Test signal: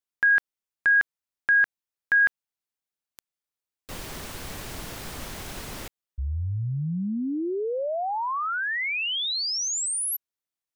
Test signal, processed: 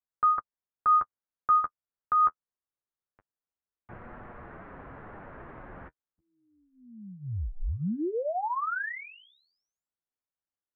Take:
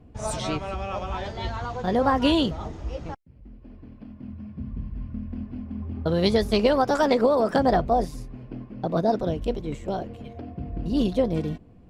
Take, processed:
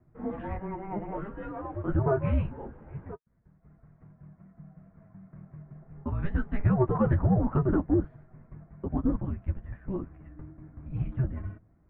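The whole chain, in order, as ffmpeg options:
ffmpeg -i in.wav -af "acontrast=66,flanger=delay=7.9:depth=4.5:regen=-22:speed=0.24:shape=sinusoidal,highpass=frequency=300:width_type=q:width=0.5412,highpass=frequency=300:width_type=q:width=1.307,lowpass=frequency=2100:width_type=q:width=0.5176,lowpass=frequency=2100:width_type=q:width=0.7071,lowpass=frequency=2100:width_type=q:width=1.932,afreqshift=-400,volume=-5.5dB" out.wav

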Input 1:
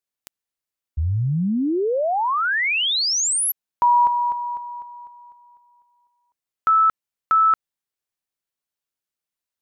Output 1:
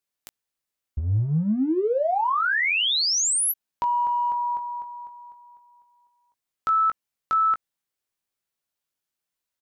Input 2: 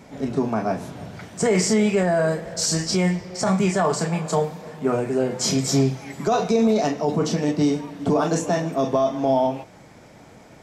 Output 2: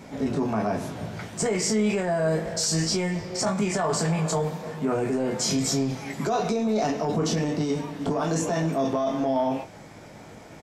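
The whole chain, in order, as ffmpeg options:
ffmpeg -i in.wav -filter_complex "[0:a]acompressor=threshold=-23dB:ratio=6:attack=0.72:release=21:knee=1:detection=rms,asplit=2[link_01][link_02];[link_02]adelay=19,volume=-7.5dB[link_03];[link_01][link_03]amix=inputs=2:normalize=0,volume=1.5dB" out.wav

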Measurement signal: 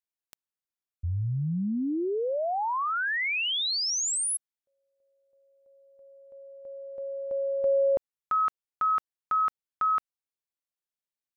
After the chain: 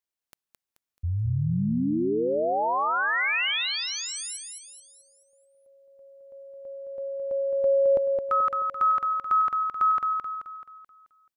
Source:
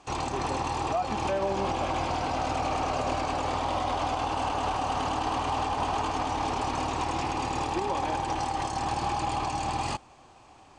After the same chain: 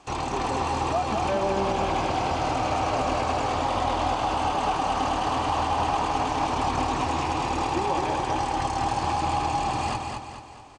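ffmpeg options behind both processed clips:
ffmpeg -i in.wav -filter_complex "[0:a]acrossover=split=3300[link_01][link_02];[link_02]acompressor=threshold=-40dB:ratio=4:attack=1:release=60[link_03];[link_01][link_03]amix=inputs=2:normalize=0,aecho=1:1:216|432|648|864|1080|1296:0.596|0.268|0.121|0.0543|0.0244|0.011,volume=2dB" out.wav

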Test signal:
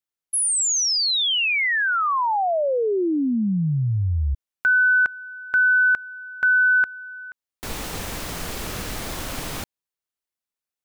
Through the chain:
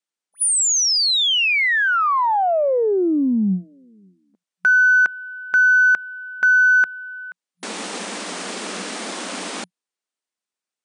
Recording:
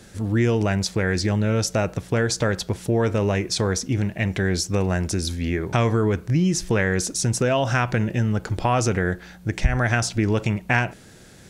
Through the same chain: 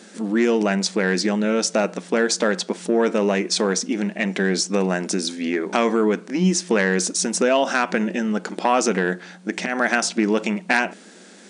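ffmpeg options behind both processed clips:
ffmpeg -i in.wav -af "aeval=exprs='0.562*(cos(1*acos(clip(val(0)/0.562,-1,1)))-cos(1*PI/2))+0.126*(cos(4*acos(clip(val(0)/0.562,-1,1)))-cos(4*PI/2))+0.0178*(cos(5*acos(clip(val(0)/0.562,-1,1)))-cos(5*PI/2))+0.0708*(cos(6*acos(clip(val(0)/0.562,-1,1)))-cos(6*PI/2))+0.00355*(cos(7*acos(clip(val(0)/0.562,-1,1)))-cos(7*PI/2))':channel_layout=same,afftfilt=real='re*between(b*sr/4096,180,9900)':imag='im*between(b*sr/4096,180,9900)':win_size=4096:overlap=0.75,volume=2.5dB" out.wav

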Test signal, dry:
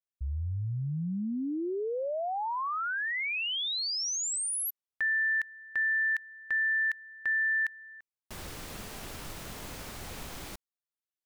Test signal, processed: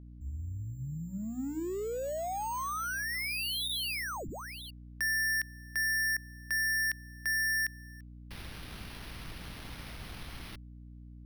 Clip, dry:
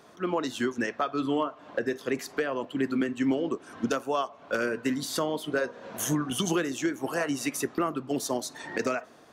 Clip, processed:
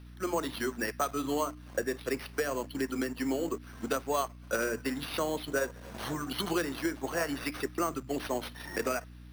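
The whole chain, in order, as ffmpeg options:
ffmpeg -i in.wav -filter_complex "[0:a]acrossover=split=290|1500|5900[link_01][link_02][link_03][link_04];[link_01]alimiter=level_in=9.5dB:limit=-24dB:level=0:latency=1:release=173,volume=-9.5dB[link_05];[link_02]aeval=exprs='sgn(val(0))*max(abs(val(0))-0.00398,0)':channel_layout=same[link_06];[link_04]acompressor=threshold=-48dB:ratio=4:attack=1.1:release=34:detection=peak[link_07];[link_05][link_06][link_03][link_07]amix=inputs=4:normalize=0,acrusher=samples=6:mix=1:aa=0.000001,bandreject=frequency=60:width_type=h:width=6,bandreject=frequency=120:width_type=h:width=6,bandreject=frequency=180:width_type=h:width=6,bandreject=frequency=240:width_type=h:width=6,bandreject=frequency=300:width_type=h:width=6,aeval=exprs='val(0)+0.00501*(sin(2*PI*60*n/s)+sin(2*PI*2*60*n/s)/2+sin(2*PI*3*60*n/s)/3+sin(2*PI*4*60*n/s)/4+sin(2*PI*5*60*n/s)/5)':channel_layout=same,volume=-1.5dB" out.wav

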